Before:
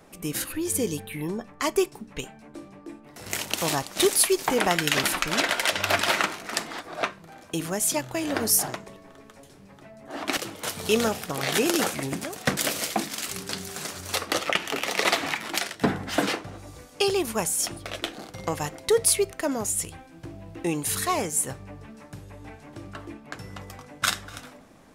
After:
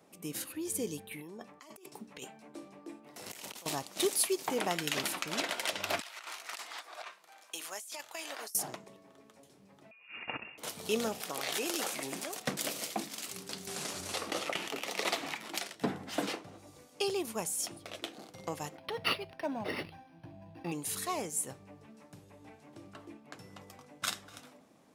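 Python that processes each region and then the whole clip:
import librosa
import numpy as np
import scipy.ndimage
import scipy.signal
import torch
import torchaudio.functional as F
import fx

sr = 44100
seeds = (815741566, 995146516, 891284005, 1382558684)

y = fx.chain(x, sr, fx.low_shelf(hz=210.0, db=-8.5),
    fx.over_compress(threshold_db=-38.0, ratio=-1.0), at=(1.11, 3.66))
y = fx.chain(y, sr, fx.highpass(hz=990.0, slope=12),
    fx.over_compress(threshold_db=-34.0, ratio=-1.0), at=(6.0, 8.55))
y = fx.chain(y, sr, fx.brickwall_highpass(low_hz=260.0),
    fx.freq_invert(carrier_hz=3100), at=(9.91, 10.58))
y = fx.chain(y, sr, fx.highpass(hz=630.0, slope=6),
    fx.clip_hard(threshold_db=-15.0),
    fx.env_flatten(amount_pct=50), at=(11.2, 12.4))
y = fx.chain(y, sr, fx.cvsd(bps=64000),
    fx.env_flatten(amount_pct=50), at=(13.67, 14.68))
y = fx.chain(y, sr, fx.comb(ms=1.2, depth=0.77),
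    fx.resample_linear(factor=6), at=(18.77, 20.72))
y = scipy.signal.sosfilt(scipy.signal.butter(2, 140.0, 'highpass', fs=sr, output='sos'), y)
y = fx.peak_eq(y, sr, hz=1600.0, db=-4.5, octaves=0.79)
y = F.gain(torch.from_numpy(y), -9.0).numpy()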